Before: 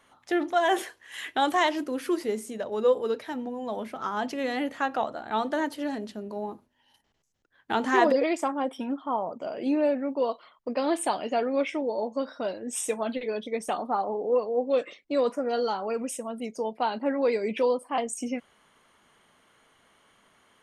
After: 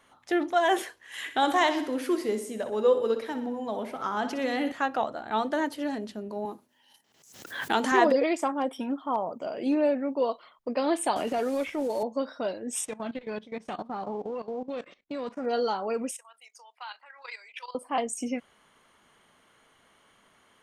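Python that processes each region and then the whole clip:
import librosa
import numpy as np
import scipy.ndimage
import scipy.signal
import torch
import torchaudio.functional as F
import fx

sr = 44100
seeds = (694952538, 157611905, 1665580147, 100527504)

y = fx.chain(x, sr, fx.highpass(hz=48.0, slope=12),
    fx.echo_feedback(ms=62, feedback_pct=55, wet_db=-11), at=(1.0, 4.72))
y = fx.chain(y, sr, fx.highpass(hz=160.0, slope=12),
    fx.high_shelf(hz=4100.0, db=9.5),
    fx.pre_swell(db_per_s=71.0), at=(6.45, 7.92))
y = fx.chain(y, sr, fx.high_shelf(hz=9500.0, db=7.5),
    fx.clip_hard(threshold_db=-18.5), at=(8.55, 9.79))
y = fx.chain(y, sr, fx.delta_mod(bps=64000, step_db=-42.5),
    fx.transient(attack_db=-10, sustain_db=-2),
    fx.band_squash(depth_pct=100), at=(11.16, 12.03))
y = fx.envelope_flatten(y, sr, power=0.6, at=(12.84, 15.44), fade=0.02)
y = fx.level_steps(y, sr, step_db=16, at=(12.84, 15.44), fade=0.02)
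y = fx.spacing_loss(y, sr, db_at_10k=20, at=(12.84, 15.44), fade=0.02)
y = fx.chain(y, sr, fx.highpass(hz=1100.0, slope=24),
    fx.level_steps(step_db=13), at=(16.11, 17.75))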